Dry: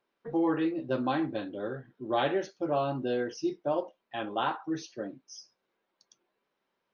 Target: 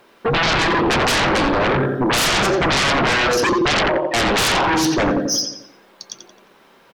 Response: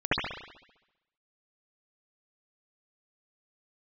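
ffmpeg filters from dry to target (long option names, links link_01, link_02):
-filter_complex "[0:a]asettb=1/sr,asplit=3[link_01][link_02][link_03];[link_01]atrim=end=3.354[link_04];[link_02]atrim=start=3.35:end=4.19,asetpts=PTS-STARTPTS,afade=type=in:duration=0.004:curve=qsin,afade=type=out:start_time=0.836:duration=0.004:curve=qsin,lowpass=4900[link_05];[link_03]atrim=start=4.186[link_06];[link_04][link_05]acrossfade=duration=0.004:curve1=hsin:curve2=qsin[link_07];[link_07][link_06]acrossfade=duration=0.004:curve1=qsin:curve2=hsin,asplit=2[link_08][link_09];[link_09]acompressor=threshold=-39dB:ratio=6,volume=0dB[link_10];[link_08][link_10]amix=inputs=2:normalize=0,asplit=2[link_11][link_12];[link_12]adelay=88,lowpass=frequency=3800:poles=1,volume=-5.5dB,asplit=2[link_13][link_14];[link_14]adelay=88,lowpass=frequency=3800:poles=1,volume=0.52,asplit=2[link_15][link_16];[link_16]adelay=88,lowpass=frequency=3800:poles=1,volume=0.52,asplit=2[link_17][link_18];[link_18]adelay=88,lowpass=frequency=3800:poles=1,volume=0.52,asplit=2[link_19][link_20];[link_20]adelay=88,lowpass=frequency=3800:poles=1,volume=0.52,asplit=2[link_21][link_22];[link_22]adelay=88,lowpass=frequency=3800:poles=1,volume=0.52,asplit=2[link_23][link_24];[link_24]adelay=88,lowpass=frequency=3800:poles=1,volume=0.52[link_25];[link_11][link_13][link_15][link_17][link_19][link_21][link_23][link_25]amix=inputs=8:normalize=0,aeval=exprs='0.2*sin(PI/2*8.91*val(0)/0.2)':channel_layout=same"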